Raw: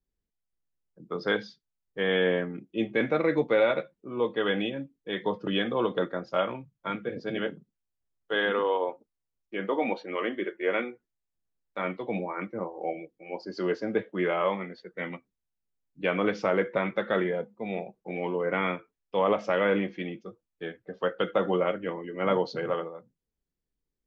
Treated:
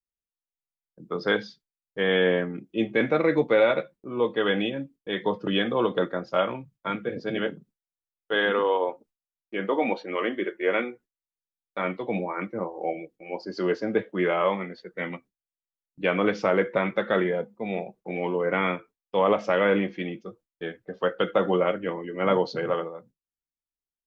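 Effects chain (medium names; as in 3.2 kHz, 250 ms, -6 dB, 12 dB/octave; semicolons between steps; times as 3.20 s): gate with hold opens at -51 dBFS; trim +3 dB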